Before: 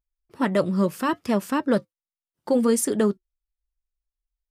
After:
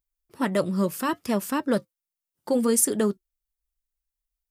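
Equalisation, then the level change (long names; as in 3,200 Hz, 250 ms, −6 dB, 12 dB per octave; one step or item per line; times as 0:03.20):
high-shelf EQ 6,900 Hz +11.5 dB
−2.5 dB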